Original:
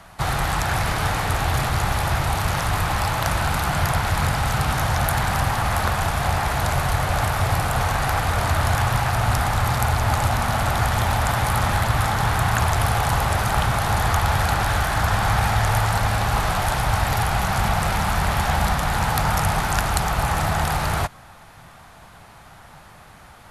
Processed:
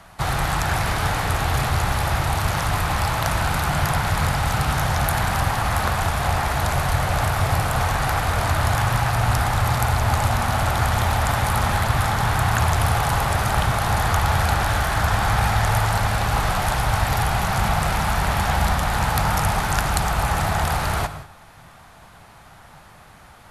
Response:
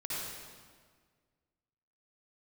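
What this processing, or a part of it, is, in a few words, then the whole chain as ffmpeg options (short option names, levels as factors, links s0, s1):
keyed gated reverb: -filter_complex "[0:a]asplit=3[s0][s1][s2];[1:a]atrim=start_sample=2205[s3];[s1][s3]afir=irnorm=-1:irlink=0[s4];[s2]apad=whole_len=1036701[s5];[s4][s5]sidechaingate=range=0.0224:threshold=0.00891:ratio=16:detection=peak,volume=0.2[s6];[s0][s6]amix=inputs=2:normalize=0,volume=0.891"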